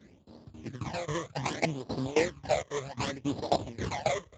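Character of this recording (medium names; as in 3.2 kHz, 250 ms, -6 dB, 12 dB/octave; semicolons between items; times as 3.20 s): tremolo saw down 3.7 Hz, depth 95%; aliases and images of a low sample rate 1.4 kHz, jitter 20%; phasing stages 12, 0.65 Hz, lowest notch 250–2300 Hz; Speex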